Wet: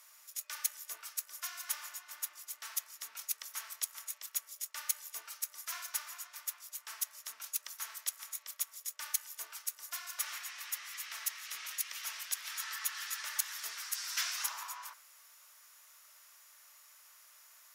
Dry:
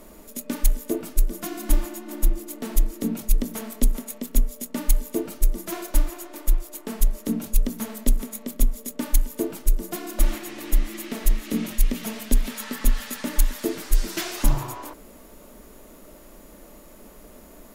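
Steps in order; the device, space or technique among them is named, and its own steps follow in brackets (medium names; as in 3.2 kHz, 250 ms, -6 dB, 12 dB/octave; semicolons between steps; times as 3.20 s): dynamic bell 1.1 kHz, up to +4 dB, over -45 dBFS, Q 0.78; headphones lying on a table (high-pass 1.2 kHz 24 dB/octave; peaking EQ 5.6 kHz +7.5 dB 0.46 oct); trim -6.5 dB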